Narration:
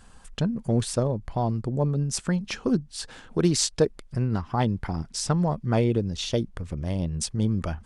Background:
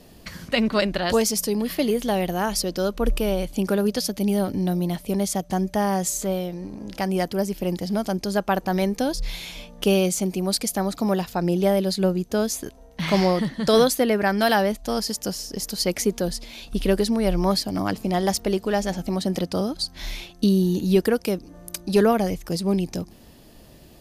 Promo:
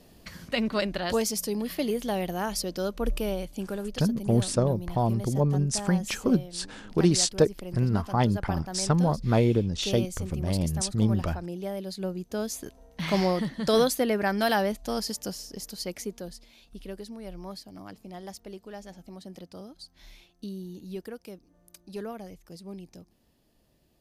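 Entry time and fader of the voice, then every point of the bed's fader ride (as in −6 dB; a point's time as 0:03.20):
3.60 s, +0.5 dB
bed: 0:03.26 −6 dB
0:03.95 −14 dB
0:11.71 −14 dB
0:12.80 −5 dB
0:15.08 −5 dB
0:16.86 −19 dB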